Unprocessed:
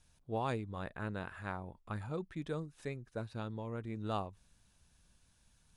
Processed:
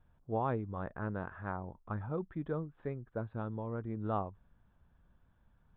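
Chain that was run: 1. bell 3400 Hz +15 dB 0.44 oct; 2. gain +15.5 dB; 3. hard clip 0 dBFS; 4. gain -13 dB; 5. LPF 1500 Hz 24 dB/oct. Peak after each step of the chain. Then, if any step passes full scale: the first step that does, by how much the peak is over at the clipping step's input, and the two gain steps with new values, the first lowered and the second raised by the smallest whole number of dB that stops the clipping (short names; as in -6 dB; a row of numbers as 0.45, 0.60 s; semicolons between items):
-20.0, -4.5, -4.5, -17.5, -22.0 dBFS; no overload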